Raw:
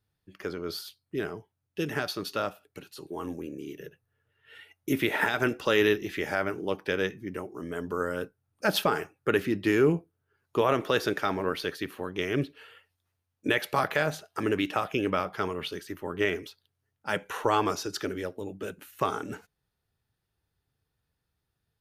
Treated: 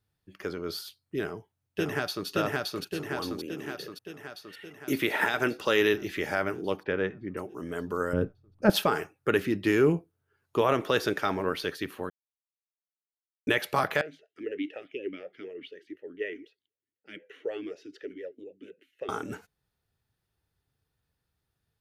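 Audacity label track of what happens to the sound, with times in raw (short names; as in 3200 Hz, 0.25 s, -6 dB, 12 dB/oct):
1.210000	2.270000	echo throw 0.57 s, feedback 65%, level -0.5 dB
3.390000	5.940000	low shelf 140 Hz -8 dB
6.830000	7.370000	LPF 2000 Hz
8.130000	8.700000	tilt -4.5 dB/oct
12.100000	13.470000	mute
14.010000	19.090000	vowel sweep e-i 4 Hz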